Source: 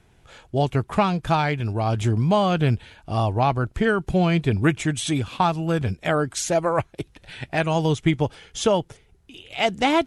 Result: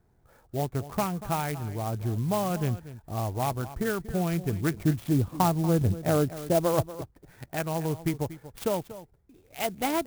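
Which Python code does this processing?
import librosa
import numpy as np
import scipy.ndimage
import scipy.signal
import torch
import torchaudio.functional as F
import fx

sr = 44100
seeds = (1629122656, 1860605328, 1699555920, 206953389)

y = fx.wiener(x, sr, points=15)
y = fx.tilt_shelf(y, sr, db=8.5, hz=1400.0, at=(4.74, 6.9))
y = y + 10.0 ** (-15.0 / 20.0) * np.pad(y, (int(237 * sr / 1000.0), 0))[:len(y)]
y = fx.clock_jitter(y, sr, seeds[0], jitter_ms=0.055)
y = y * 10.0 ** (-8.0 / 20.0)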